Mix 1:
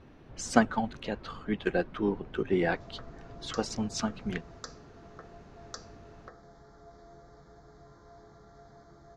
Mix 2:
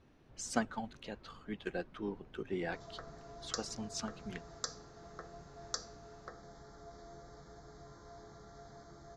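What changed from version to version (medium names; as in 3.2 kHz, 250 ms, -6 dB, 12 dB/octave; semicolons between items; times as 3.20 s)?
speech -11.0 dB; master: add treble shelf 4.8 kHz +10 dB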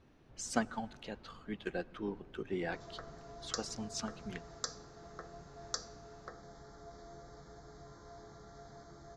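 reverb: on, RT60 2.4 s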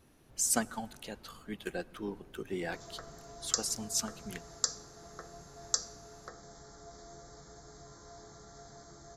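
master: remove distance through air 150 m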